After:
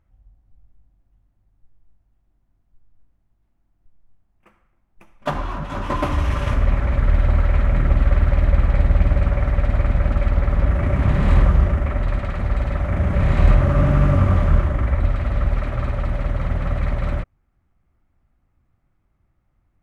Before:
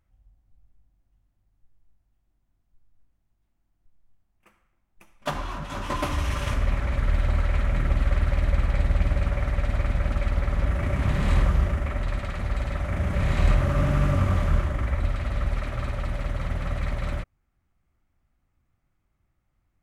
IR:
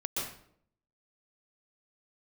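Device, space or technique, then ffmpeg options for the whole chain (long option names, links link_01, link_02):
through cloth: -af "highshelf=frequency=2900:gain=-12.5,volume=6.5dB"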